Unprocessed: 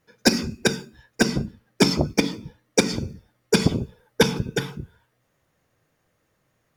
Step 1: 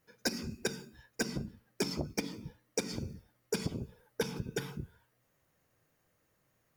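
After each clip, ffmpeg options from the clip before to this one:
ffmpeg -i in.wav -af "highshelf=frequency=11000:gain=10,bandreject=frequency=3500:width=25,acompressor=threshold=-26dB:ratio=4,volume=-6dB" out.wav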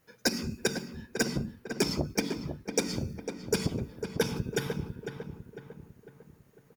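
ffmpeg -i in.wav -filter_complex "[0:a]asplit=2[link_01][link_02];[link_02]adelay=501,lowpass=frequency=2100:poles=1,volume=-7.5dB,asplit=2[link_03][link_04];[link_04]adelay=501,lowpass=frequency=2100:poles=1,volume=0.48,asplit=2[link_05][link_06];[link_06]adelay=501,lowpass=frequency=2100:poles=1,volume=0.48,asplit=2[link_07][link_08];[link_08]adelay=501,lowpass=frequency=2100:poles=1,volume=0.48,asplit=2[link_09][link_10];[link_10]adelay=501,lowpass=frequency=2100:poles=1,volume=0.48,asplit=2[link_11][link_12];[link_12]adelay=501,lowpass=frequency=2100:poles=1,volume=0.48[link_13];[link_01][link_03][link_05][link_07][link_09][link_11][link_13]amix=inputs=7:normalize=0,volume=5.5dB" out.wav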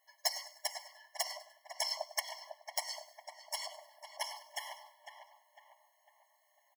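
ffmpeg -i in.wav -filter_complex "[0:a]asplit=4[link_01][link_02][link_03][link_04];[link_02]adelay=100,afreqshift=39,volume=-15.5dB[link_05];[link_03]adelay=200,afreqshift=78,volume=-24.1dB[link_06];[link_04]adelay=300,afreqshift=117,volume=-32.8dB[link_07];[link_01][link_05][link_06][link_07]amix=inputs=4:normalize=0,aeval=exprs='(mod(4.47*val(0)+1,2)-1)/4.47':channel_layout=same,afftfilt=real='re*eq(mod(floor(b*sr/1024/560),2),1)':imag='im*eq(mod(floor(b*sr/1024/560),2),1)':win_size=1024:overlap=0.75" out.wav

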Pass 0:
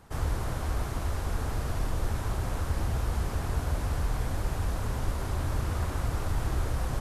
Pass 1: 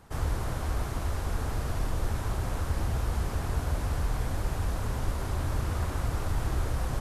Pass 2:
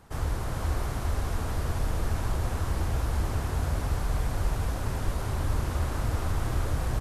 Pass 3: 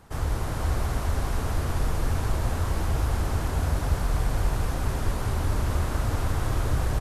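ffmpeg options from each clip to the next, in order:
ffmpeg -i in.wav -af anull out.wav
ffmpeg -i in.wav -af "aecho=1:1:422:0.596" out.wav
ffmpeg -i in.wav -af "aecho=1:1:196:0.473,volume=2dB" out.wav

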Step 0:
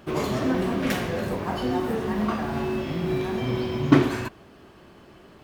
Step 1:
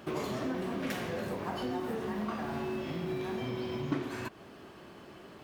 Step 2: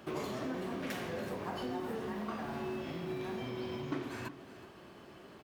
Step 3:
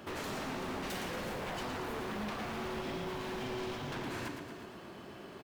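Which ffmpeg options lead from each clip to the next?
ffmpeg -i in.wav -af "acompressor=threshold=-34dB:ratio=3,highpass=frequency=130:poles=1" out.wav
ffmpeg -i in.wav -filter_complex "[0:a]aecho=1:1:372:0.168,acrossover=split=260[link_01][link_02];[link_01]alimiter=level_in=12.5dB:limit=-24dB:level=0:latency=1,volume=-12.5dB[link_03];[link_03][link_02]amix=inputs=2:normalize=0,volume=-3dB" out.wav
ffmpeg -i in.wav -af "aeval=exprs='0.0119*(abs(mod(val(0)/0.0119+3,4)-2)-1)':channel_layout=same,aecho=1:1:115|230|345|460|575|690|805:0.473|0.251|0.133|0.0704|0.0373|0.0198|0.0105,volume=3.5dB" out.wav

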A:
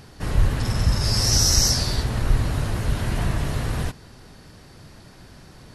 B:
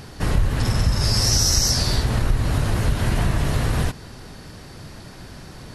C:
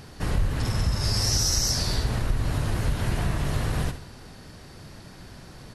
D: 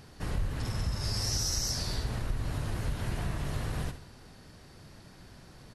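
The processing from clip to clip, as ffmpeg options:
ffmpeg -i in.wav -af "acompressor=threshold=-23dB:ratio=3,volume=6.5dB" out.wav
ffmpeg -i in.wav -af "aecho=1:1:69|138|207|276:0.266|0.117|0.0515|0.0227,volume=-5.5dB" out.wav
ffmpeg -i in.wav -af "aresample=32000,aresample=44100,volume=-7.5dB" out.wav

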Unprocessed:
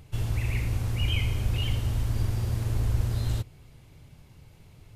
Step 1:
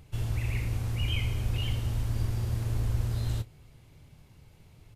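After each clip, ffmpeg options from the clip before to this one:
ffmpeg -i in.wav -filter_complex "[0:a]asplit=2[link_01][link_02];[link_02]adelay=27,volume=-13.5dB[link_03];[link_01][link_03]amix=inputs=2:normalize=0,volume=-3dB" out.wav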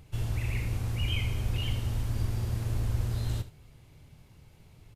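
ffmpeg -i in.wav -af "aecho=1:1:75:0.188" out.wav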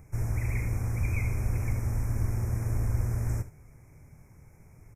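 ffmpeg -i in.wav -af "asuperstop=centerf=3600:order=20:qfactor=1.3,volume=1.5dB" out.wav

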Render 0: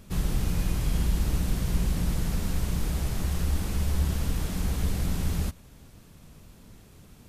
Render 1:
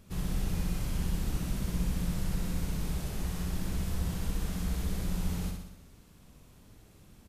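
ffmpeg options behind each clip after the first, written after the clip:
ffmpeg -i in.wav -af "aecho=1:1:63|126|189|252|315|378|441|504:0.631|0.372|0.22|0.13|0.0765|0.0451|0.0266|0.0157,volume=-7dB" out.wav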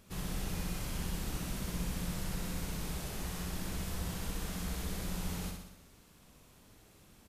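ffmpeg -i in.wav -af "lowshelf=frequency=280:gain=-8.5,volume=1dB" out.wav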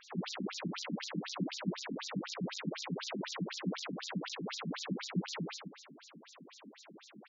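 ffmpeg -i in.wav -filter_complex "[0:a]asoftclip=type=tanh:threshold=-37dB,acrossover=split=6200[link_01][link_02];[link_02]acompressor=threshold=-58dB:ratio=4:attack=1:release=60[link_03];[link_01][link_03]amix=inputs=2:normalize=0,afftfilt=real='re*between(b*sr/1024,210*pow(5300/210,0.5+0.5*sin(2*PI*4*pts/sr))/1.41,210*pow(5300/210,0.5+0.5*sin(2*PI*4*pts/sr))*1.41)':imag='im*between(b*sr/1024,210*pow(5300/210,0.5+0.5*sin(2*PI*4*pts/sr))/1.41,210*pow(5300/210,0.5+0.5*sin(2*PI*4*pts/sr))*1.41)':win_size=1024:overlap=0.75,volume=15dB" out.wav

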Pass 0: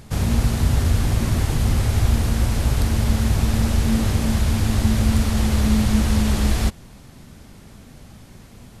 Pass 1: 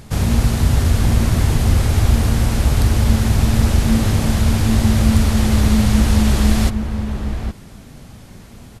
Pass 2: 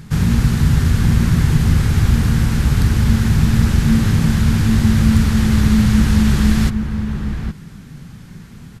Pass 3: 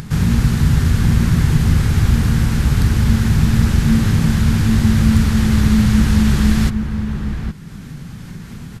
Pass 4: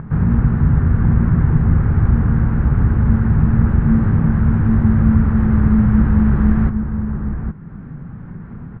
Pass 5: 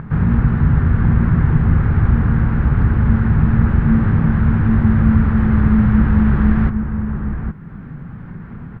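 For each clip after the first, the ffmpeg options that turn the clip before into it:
ffmpeg -i in.wav -filter_complex "[0:a]asplit=2[link_01][link_02];[link_02]adelay=816.3,volume=-7dB,highshelf=frequency=4000:gain=-18.4[link_03];[link_01][link_03]amix=inputs=2:normalize=0,volume=3.5dB" out.wav
ffmpeg -i in.wav -af "equalizer=frequency=160:width_type=o:width=0.67:gain=11,equalizer=frequency=630:width_type=o:width=0.67:gain=-9,equalizer=frequency=1600:width_type=o:width=0.67:gain=5,equalizer=frequency=10000:width_type=o:width=0.67:gain=-3,volume=-1.5dB" out.wav
ffmpeg -i in.wav -af "acompressor=mode=upward:threshold=-24dB:ratio=2.5" out.wav
ffmpeg -i in.wav -af "lowpass=frequency=1500:width=0.5412,lowpass=frequency=1500:width=1.3066" out.wav
ffmpeg -i in.wav -af "highshelf=frequency=2000:gain=11" out.wav

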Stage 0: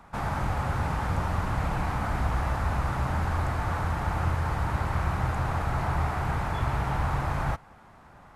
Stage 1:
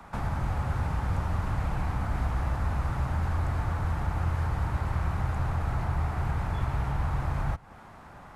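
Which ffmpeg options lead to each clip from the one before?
ffmpeg -i in.wav -filter_complex "[0:a]acrossover=split=120|390[link_01][link_02][link_03];[link_01]acompressor=threshold=-30dB:ratio=4[link_04];[link_02]acompressor=threshold=-43dB:ratio=4[link_05];[link_03]acompressor=threshold=-42dB:ratio=4[link_06];[link_04][link_05][link_06]amix=inputs=3:normalize=0,volume=4dB" out.wav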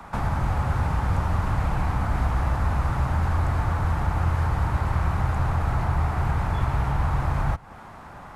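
ffmpeg -i in.wav -af "equalizer=frequency=1000:width=1.5:gain=2,volume=5dB" out.wav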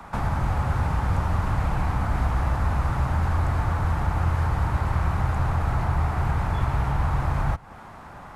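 ffmpeg -i in.wav -af anull out.wav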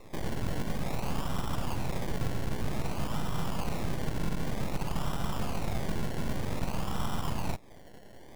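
ffmpeg -i in.wav -af "acrusher=samples=28:mix=1:aa=0.000001:lfo=1:lforange=16.8:lforate=0.53,aeval=exprs='abs(val(0))':channel_layout=same,volume=-6dB" out.wav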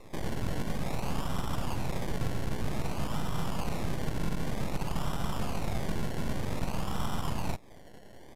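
ffmpeg -i in.wav -af "aresample=32000,aresample=44100" out.wav

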